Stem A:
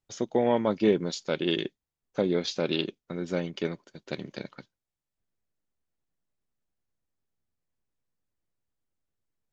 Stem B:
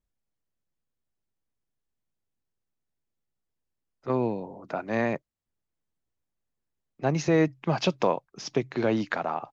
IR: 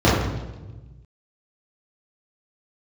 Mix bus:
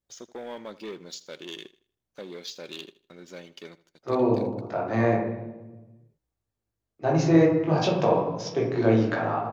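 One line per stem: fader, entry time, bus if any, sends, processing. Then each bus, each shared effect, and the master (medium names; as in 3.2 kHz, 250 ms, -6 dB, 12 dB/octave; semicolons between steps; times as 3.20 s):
-16.5 dB, 0.00 s, no send, echo send -18 dB, treble shelf 3.6 kHz +9 dB; waveshaping leveller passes 2
+1.0 dB, 0.00 s, send -21 dB, no echo send, chorus 2 Hz, delay 16.5 ms, depth 3.2 ms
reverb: on, RT60 1.2 s, pre-delay 3 ms
echo: feedback delay 79 ms, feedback 32%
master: bass shelf 280 Hz -10 dB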